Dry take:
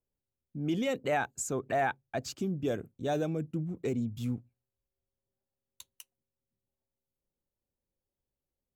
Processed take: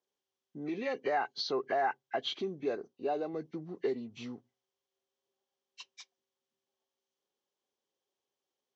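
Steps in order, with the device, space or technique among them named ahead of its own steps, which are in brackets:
hearing aid with frequency lowering (hearing-aid frequency compression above 1,500 Hz 1.5 to 1; downward compressor 3 to 1, threshold −34 dBFS, peak gain reduction 7 dB; loudspeaker in its box 290–6,300 Hz, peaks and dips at 400 Hz +8 dB, 780 Hz +7 dB, 1,100 Hz +8 dB, 1,700 Hz +5 dB, 3,200 Hz +10 dB, 5,900 Hz +4 dB)
0:02.75–0:03.34: graphic EQ with 10 bands 125 Hz −6 dB, 2,000 Hz −9 dB, 8,000 Hz −7 dB

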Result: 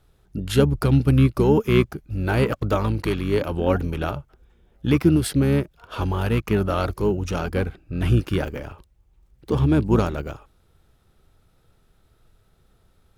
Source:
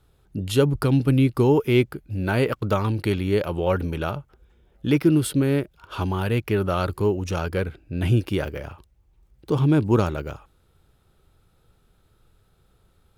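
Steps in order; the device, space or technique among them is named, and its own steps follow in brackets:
octave pedal (pitch-shifted copies added −12 semitones −6 dB)

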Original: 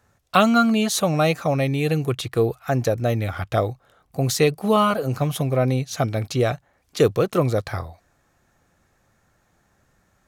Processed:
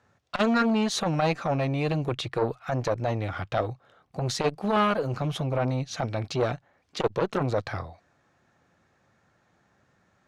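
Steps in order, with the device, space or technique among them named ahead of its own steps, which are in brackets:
valve radio (band-pass filter 100–4,900 Hz; tube saturation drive 10 dB, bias 0.35; saturating transformer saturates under 850 Hz)

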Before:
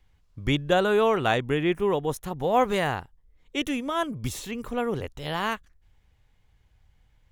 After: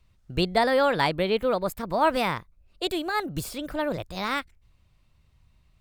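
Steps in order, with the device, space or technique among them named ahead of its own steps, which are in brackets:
nightcore (speed change +26%)

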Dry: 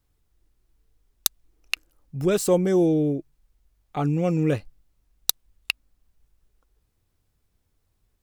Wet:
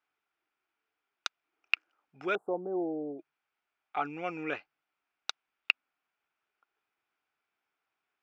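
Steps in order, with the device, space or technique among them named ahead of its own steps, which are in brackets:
0:02.35–0:03.19: inverse Chebyshev band-stop filter 2,300–5,600 Hz, stop band 70 dB
phone earpiece (loudspeaker in its box 430–4,400 Hz, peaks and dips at 520 Hz −8 dB, 780 Hz +4 dB, 1,400 Hz +9 dB, 2,400 Hz +7 dB, 4,100 Hz −8 dB)
low-shelf EQ 280 Hz −7.5 dB
level −4 dB

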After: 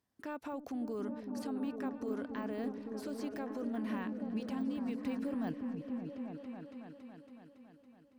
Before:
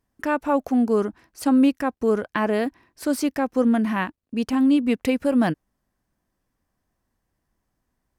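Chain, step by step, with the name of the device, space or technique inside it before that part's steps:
broadcast voice chain (high-pass filter 97 Hz; de-essing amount 100%; downward compressor, threshold −25 dBFS, peak gain reduction 10.5 dB; parametric band 4,000 Hz +5 dB 0.84 octaves; brickwall limiter −25.5 dBFS, peak gain reduction 10 dB)
echo whose low-pass opens from repeat to repeat 279 ms, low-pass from 200 Hz, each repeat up 1 octave, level 0 dB
level −7.5 dB

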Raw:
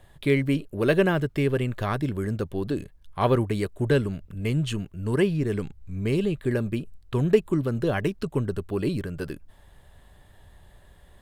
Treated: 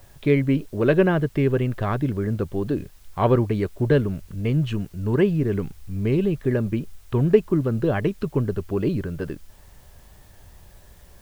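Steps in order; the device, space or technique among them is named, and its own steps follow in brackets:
cassette deck with a dirty head (head-to-tape spacing loss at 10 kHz 23 dB; tape wow and flutter; white noise bed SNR 35 dB)
level +4 dB

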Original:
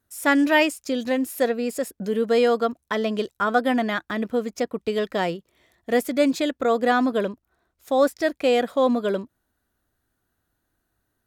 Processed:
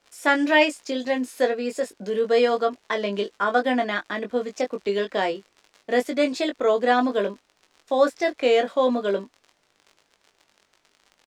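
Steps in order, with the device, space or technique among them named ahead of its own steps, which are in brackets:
downward expander −41 dBFS
notch filter 1,300 Hz, Q 14
warped LP (wow of a warped record 33 1/3 rpm, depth 100 cents; surface crackle 51 per second −36 dBFS; pink noise bed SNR 43 dB)
three-way crossover with the lows and the highs turned down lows −13 dB, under 260 Hz, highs −18 dB, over 7,900 Hz
double-tracking delay 20 ms −5.5 dB

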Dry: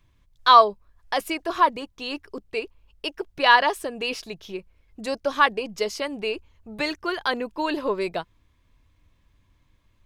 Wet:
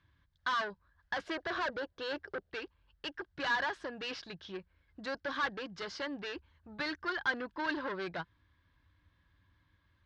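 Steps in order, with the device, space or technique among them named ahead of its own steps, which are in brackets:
0:01.23–0:02.51: flat-topped bell 520 Hz +12.5 dB 1.2 octaves
guitar amplifier (tube saturation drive 28 dB, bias 0.3; bass and treble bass +4 dB, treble +1 dB; loudspeaker in its box 84–4,600 Hz, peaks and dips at 130 Hz −7 dB, 220 Hz −9 dB, 430 Hz −8 dB, 670 Hz −5 dB, 1,600 Hz +10 dB, 2,500 Hz −6 dB)
level −3.5 dB

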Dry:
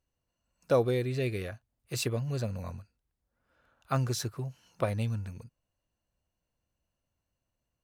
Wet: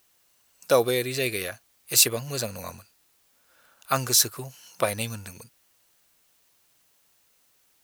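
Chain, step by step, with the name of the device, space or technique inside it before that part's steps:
turntable without a phono preamp (RIAA equalisation recording; white noise bed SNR 37 dB)
level +7.5 dB

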